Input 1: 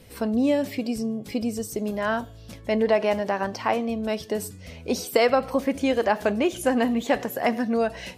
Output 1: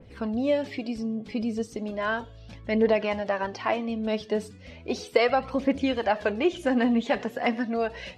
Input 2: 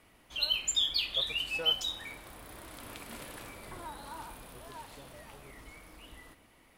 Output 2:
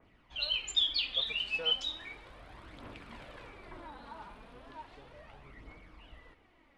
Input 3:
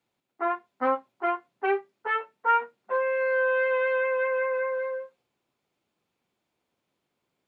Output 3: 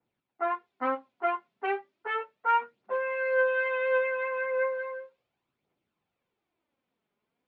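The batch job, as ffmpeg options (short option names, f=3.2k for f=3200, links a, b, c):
-af "aphaser=in_gain=1:out_gain=1:delay=5:decay=0.43:speed=0.35:type=triangular,lowpass=3.2k,adynamicequalizer=threshold=0.00794:dfrequency=2500:dqfactor=0.7:tfrequency=2500:tqfactor=0.7:attack=5:release=100:ratio=0.375:range=3.5:mode=boostabove:tftype=highshelf,volume=-3.5dB"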